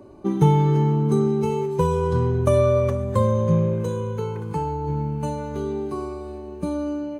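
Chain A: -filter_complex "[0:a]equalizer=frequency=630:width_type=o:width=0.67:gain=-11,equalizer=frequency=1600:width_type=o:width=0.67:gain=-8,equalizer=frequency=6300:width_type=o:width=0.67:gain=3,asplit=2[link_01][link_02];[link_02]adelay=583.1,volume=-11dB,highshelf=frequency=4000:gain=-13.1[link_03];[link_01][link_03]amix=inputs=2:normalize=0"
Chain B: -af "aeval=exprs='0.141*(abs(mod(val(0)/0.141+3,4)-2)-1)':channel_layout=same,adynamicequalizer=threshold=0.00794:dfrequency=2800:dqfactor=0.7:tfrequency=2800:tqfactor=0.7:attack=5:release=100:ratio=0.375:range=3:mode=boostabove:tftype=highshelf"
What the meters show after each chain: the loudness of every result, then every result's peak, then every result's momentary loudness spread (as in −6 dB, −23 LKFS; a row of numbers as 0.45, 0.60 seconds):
−24.0, −24.5 LKFS; −7.0, −14.0 dBFS; 12, 7 LU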